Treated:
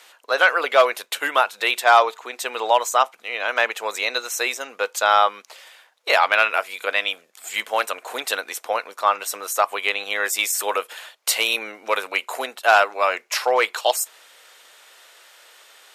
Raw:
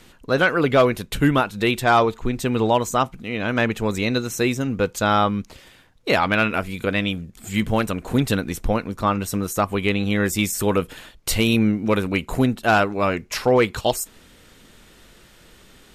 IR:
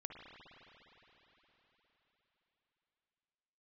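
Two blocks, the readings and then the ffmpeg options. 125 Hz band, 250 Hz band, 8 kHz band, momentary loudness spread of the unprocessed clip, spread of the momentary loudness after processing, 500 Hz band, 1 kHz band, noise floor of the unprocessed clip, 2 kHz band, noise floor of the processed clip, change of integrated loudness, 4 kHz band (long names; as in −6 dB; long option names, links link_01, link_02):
below −40 dB, −22.0 dB, +3.5 dB, 7 LU, 10 LU, −1.5 dB, +3.0 dB, −51 dBFS, +3.5 dB, −57 dBFS, +0.5 dB, +3.5 dB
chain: -af "highpass=frequency=590:width=0.5412,highpass=frequency=590:width=1.3066,volume=3.5dB"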